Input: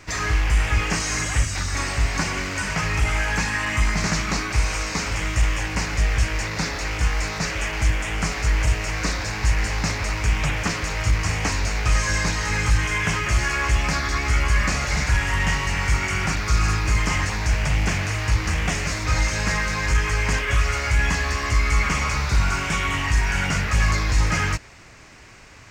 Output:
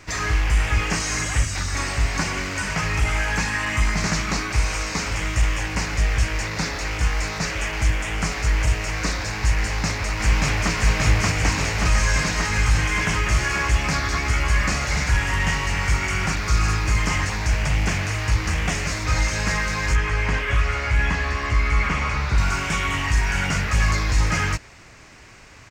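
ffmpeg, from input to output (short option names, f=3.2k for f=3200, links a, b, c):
-filter_complex "[0:a]asplit=2[a][b];[b]afade=t=in:st=9.61:d=0.01,afade=t=out:st=10.73:d=0.01,aecho=0:1:580|1160|1740|2320|2900|3480|4060|4640|5220|5800|6380|6960:0.891251|0.713001|0.570401|0.45632|0.365056|0.292045|0.233636|0.186909|0.149527|0.119622|0.0956973|0.0765579[c];[a][c]amix=inputs=2:normalize=0,asettb=1/sr,asplit=3[d][e][f];[d]atrim=end=19.954[g];[e]atrim=start=19.95:end=22.38,asetpts=PTS-STARTPTS,afade=t=in:d=0.004:c=qsin,afade=t=out:st=2.426:d=0.004:c=qsin,acrossover=split=3900[h][i];[i]acompressor=threshold=-45dB:ratio=4:attack=1:release=60[j];[h][j]amix=inputs=2:normalize=0[k];[f]atrim=start=22.376[l];[g][k]acrossfade=d=0.004:c1=hsin:c2=qsin[m];[m][l]acrossfade=d=0.004:c1=qsin:c2=hsin"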